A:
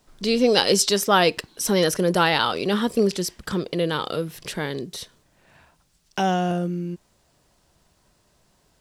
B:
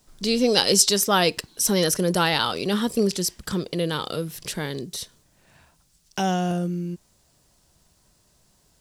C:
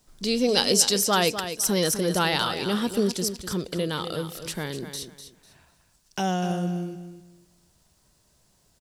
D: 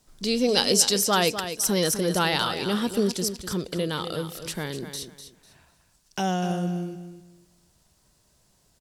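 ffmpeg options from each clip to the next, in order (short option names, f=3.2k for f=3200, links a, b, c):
-af "bass=f=250:g=4,treble=f=4k:g=8,volume=-3dB"
-af "aecho=1:1:249|498|747:0.316|0.0759|0.0182,volume=-2.5dB"
-ar 48000 -c:a libopus -b:a 256k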